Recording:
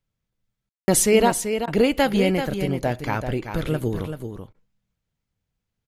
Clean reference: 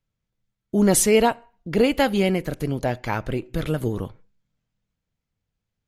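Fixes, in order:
ambience match 0:00.69–0:00.88
repair the gap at 0:00.83/0:01.66/0:04.53, 14 ms
echo removal 385 ms −8 dB

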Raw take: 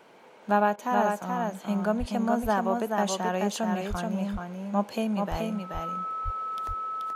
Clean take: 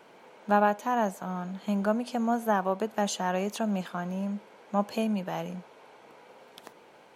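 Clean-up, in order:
notch filter 1,300 Hz, Q 30
high-pass at the plosives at 0:01.99/0:03.89/0:05.30/0:06.24
repair the gap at 0:00.76, 20 ms
echo removal 430 ms −4 dB

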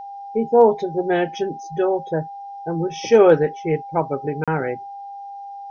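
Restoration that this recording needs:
notch filter 800 Hz, Q 30
repair the gap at 0:04.44, 36 ms
downward expander −27 dBFS, range −21 dB

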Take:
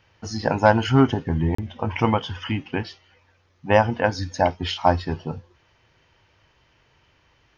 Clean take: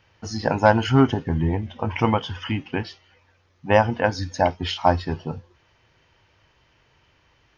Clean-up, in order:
repair the gap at 0:01.55, 34 ms

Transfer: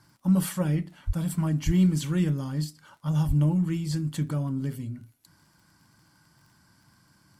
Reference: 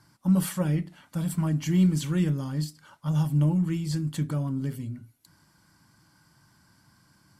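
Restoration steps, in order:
click removal
high-pass at the plosives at 0:01.06/0:01.65/0:03.27

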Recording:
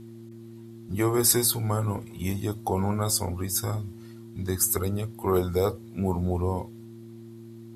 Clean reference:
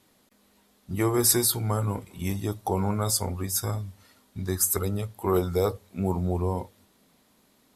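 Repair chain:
hum removal 114.3 Hz, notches 3

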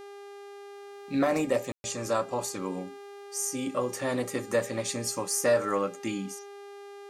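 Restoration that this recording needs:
hum removal 402.6 Hz, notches 31
ambience match 0:01.72–0:01.84

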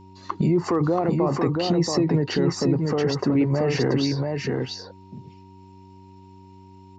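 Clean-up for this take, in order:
hum removal 94.9 Hz, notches 4
notch filter 940 Hz, Q 30
echo removal 680 ms −3.5 dB

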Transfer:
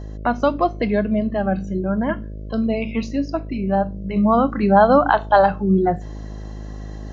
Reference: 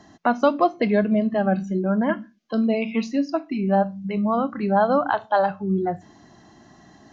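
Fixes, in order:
hum removal 52.2 Hz, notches 12
level 0 dB, from 0:04.16 −6 dB

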